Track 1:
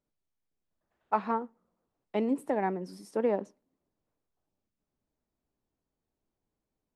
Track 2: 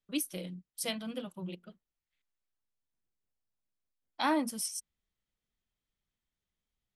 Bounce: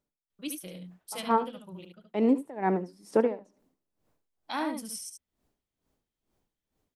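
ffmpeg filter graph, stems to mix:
ffmpeg -i stem1.wav -i stem2.wav -filter_complex "[0:a]dynaudnorm=framelen=340:gausssize=3:maxgain=8dB,alimiter=limit=-14.5dB:level=0:latency=1:release=321,aeval=exprs='val(0)*pow(10,-21*(0.5-0.5*cos(2*PI*2.2*n/s))/20)':channel_layout=same,volume=2.5dB,asplit=2[link_01][link_02];[link_02]volume=-15dB[link_03];[1:a]adelay=300,volume=-3.5dB,asplit=2[link_04][link_05];[link_05]volume=-5.5dB[link_06];[link_03][link_06]amix=inputs=2:normalize=0,aecho=0:1:73:1[link_07];[link_01][link_04][link_07]amix=inputs=3:normalize=0" out.wav

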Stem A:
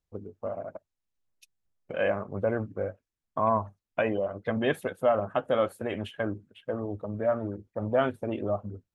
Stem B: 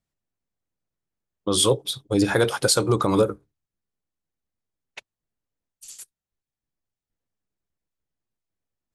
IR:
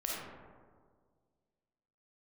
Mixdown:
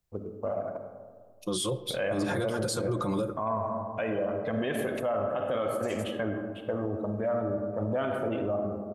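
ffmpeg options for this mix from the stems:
-filter_complex "[0:a]highshelf=frequency=10000:gain=7.5,volume=-1dB,asplit=2[link_01][link_02];[link_02]volume=-5.5dB[link_03];[1:a]lowshelf=frequency=230:gain=7,aecho=1:1:5.7:0.65,volume=-8.5dB,asplit=2[link_04][link_05];[link_05]volume=-21.5dB[link_06];[2:a]atrim=start_sample=2205[link_07];[link_03][link_06]amix=inputs=2:normalize=0[link_08];[link_08][link_07]afir=irnorm=-1:irlink=0[link_09];[link_01][link_04][link_09]amix=inputs=3:normalize=0,alimiter=limit=-21.5dB:level=0:latency=1:release=55"

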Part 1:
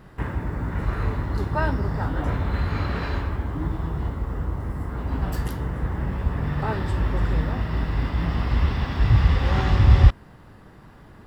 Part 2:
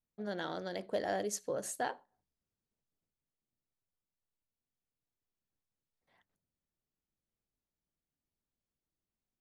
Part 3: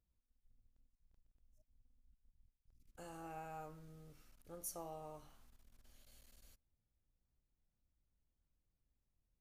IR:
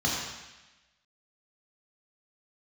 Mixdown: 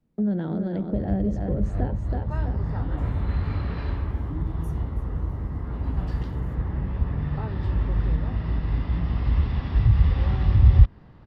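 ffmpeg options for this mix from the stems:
-filter_complex "[0:a]lowpass=frequency=5000:width=0.5412,lowpass=frequency=5000:width=1.3066,equalizer=frequency=1500:width_type=o:width=0.24:gain=-3.5,adelay=750,volume=-6.5dB[link_01];[1:a]lowpass=3000,equalizer=frequency=230:width=0.38:gain=14.5,acontrast=78,volume=1dB,asplit=2[link_02][link_03];[link_03]volume=-7dB[link_04];[2:a]acompressor=threshold=-53dB:ratio=6,volume=-2.5dB,asplit=2[link_05][link_06];[link_06]volume=-14.5dB[link_07];[link_04][link_07]amix=inputs=2:normalize=0,aecho=0:1:326|652|978|1304:1|0.3|0.09|0.027[link_08];[link_01][link_02][link_05][link_08]amix=inputs=4:normalize=0,lowshelf=frequency=330:gain=6.5,acrossover=split=170[link_09][link_10];[link_10]acompressor=threshold=-33dB:ratio=5[link_11];[link_09][link_11]amix=inputs=2:normalize=0"

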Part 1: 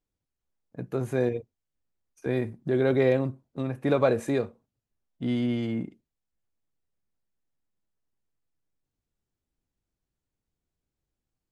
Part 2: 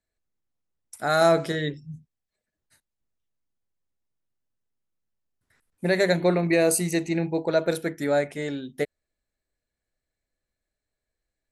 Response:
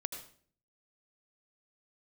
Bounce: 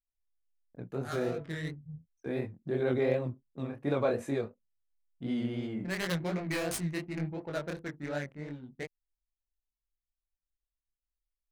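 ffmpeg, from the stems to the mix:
-filter_complex "[0:a]volume=-3.5dB,asplit=2[link_01][link_02];[1:a]equalizer=frequency=510:width_type=o:width=2.5:gain=-13,adynamicsmooth=sensitivity=4.5:basefreq=540,aeval=exprs='0.075*(abs(mod(val(0)/0.075+3,4)-2)-1)':channel_layout=same,volume=1dB[link_03];[link_02]apad=whole_len=508011[link_04];[link_03][link_04]sidechaincompress=threshold=-39dB:ratio=8:attack=27:release=201[link_05];[link_01][link_05]amix=inputs=2:normalize=0,anlmdn=0.000631,flanger=delay=20:depth=7.5:speed=2.8"

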